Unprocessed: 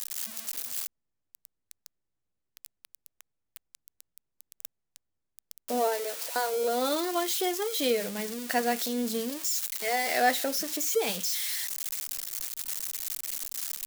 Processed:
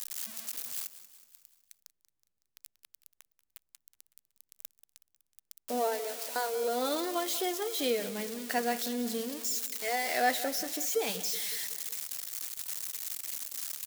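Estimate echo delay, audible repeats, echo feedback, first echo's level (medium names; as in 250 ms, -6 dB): 186 ms, 4, 55%, -15.0 dB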